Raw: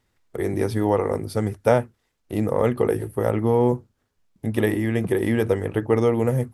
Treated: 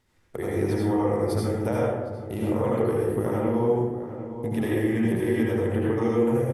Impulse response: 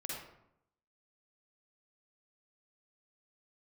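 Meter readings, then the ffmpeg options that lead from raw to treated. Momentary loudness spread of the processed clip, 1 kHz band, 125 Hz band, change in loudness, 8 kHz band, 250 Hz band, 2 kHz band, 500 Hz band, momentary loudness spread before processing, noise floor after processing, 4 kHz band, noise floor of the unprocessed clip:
8 LU, -3.5 dB, -2.5 dB, -2.5 dB, -2.5 dB, -0.5 dB, -4.0 dB, -3.0 dB, 8 LU, -53 dBFS, no reading, -72 dBFS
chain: -filter_complex "[0:a]acompressor=threshold=0.0316:ratio=3,asplit=2[s0][s1];[s1]adelay=758,volume=0.282,highshelf=f=4000:g=-17.1[s2];[s0][s2]amix=inputs=2:normalize=0[s3];[1:a]atrim=start_sample=2205,asetrate=26901,aresample=44100[s4];[s3][s4]afir=irnorm=-1:irlink=0,volume=1.33"

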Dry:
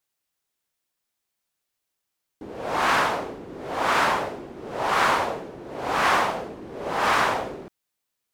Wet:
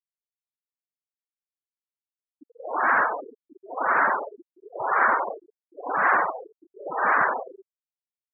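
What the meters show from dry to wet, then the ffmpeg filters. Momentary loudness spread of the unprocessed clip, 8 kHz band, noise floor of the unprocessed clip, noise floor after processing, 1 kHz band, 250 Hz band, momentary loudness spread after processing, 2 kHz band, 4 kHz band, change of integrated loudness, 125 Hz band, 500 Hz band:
16 LU, under -40 dB, -81 dBFS, under -85 dBFS, 0.0 dB, -7.5 dB, 19 LU, +1.5 dB, under -35 dB, 0.0 dB, under -10 dB, -3.5 dB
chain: -af "afftfilt=real='re*gte(hypot(re,im),0.126)':imag='im*gte(hypot(re,im),0.126)':win_size=1024:overlap=0.75,highshelf=f=2300:t=q:w=3:g=-10,volume=0.75"

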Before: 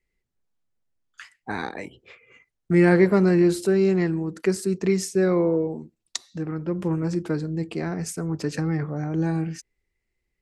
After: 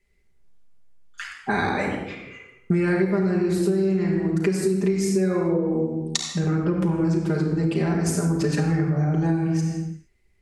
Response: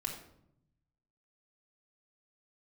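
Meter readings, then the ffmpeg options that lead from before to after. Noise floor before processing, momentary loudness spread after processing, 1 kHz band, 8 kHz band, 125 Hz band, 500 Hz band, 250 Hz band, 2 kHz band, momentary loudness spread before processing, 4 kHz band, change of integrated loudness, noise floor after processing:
-80 dBFS, 10 LU, +3.0 dB, +3.0 dB, +3.0 dB, -1.0 dB, +1.0 dB, +1.0 dB, 16 LU, +4.5 dB, +0.5 dB, -62 dBFS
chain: -filter_complex "[1:a]atrim=start_sample=2205,afade=t=out:st=0.32:d=0.01,atrim=end_sample=14553,asetrate=24696,aresample=44100[s0];[0:a][s0]afir=irnorm=-1:irlink=0,acompressor=threshold=0.0631:ratio=10,volume=1.88"

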